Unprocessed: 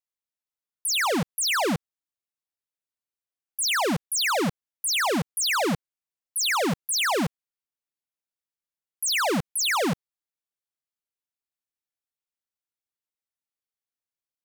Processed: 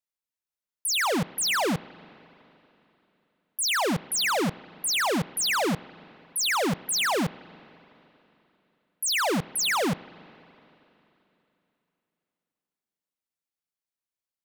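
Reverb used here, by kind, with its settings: spring tank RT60 3.2 s, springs 36/41/47 ms, chirp 30 ms, DRR 19.5 dB; trim -1 dB

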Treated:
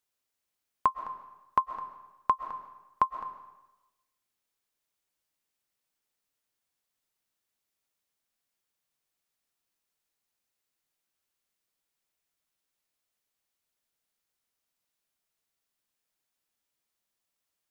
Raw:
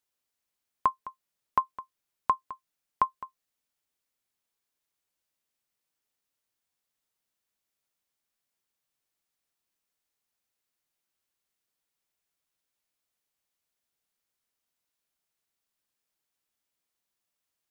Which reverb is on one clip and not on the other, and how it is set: algorithmic reverb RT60 1 s, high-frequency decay 0.9×, pre-delay 90 ms, DRR 9.5 dB

